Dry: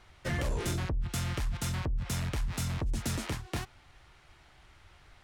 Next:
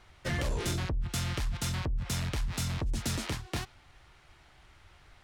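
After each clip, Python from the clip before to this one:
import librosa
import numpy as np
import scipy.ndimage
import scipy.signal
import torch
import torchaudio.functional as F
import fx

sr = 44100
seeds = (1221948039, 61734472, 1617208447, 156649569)

y = fx.dynamic_eq(x, sr, hz=4200.0, q=0.97, threshold_db=-51.0, ratio=4.0, max_db=4)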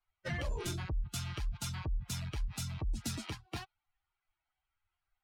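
y = fx.bin_expand(x, sr, power=2.0)
y = y * 10.0 ** (-1.5 / 20.0)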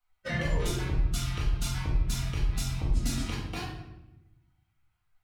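y = fx.room_shoebox(x, sr, seeds[0], volume_m3=380.0, walls='mixed', distance_m=1.9)
y = y * 10.0 ** (1.5 / 20.0)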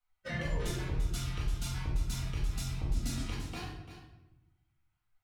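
y = x + 10.0 ** (-11.5 / 20.0) * np.pad(x, (int(342 * sr / 1000.0), 0))[:len(x)]
y = y * 10.0 ** (-5.5 / 20.0)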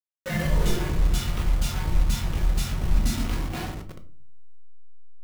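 y = fx.delta_hold(x, sr, step_db=-40.0)
y = fx.room_shoebox(y, sr, seeds[1], volume_m3=280.0, walls='furnished', distance_m=1.0)
y = y * 10.0 ** (8.0 / 20.0)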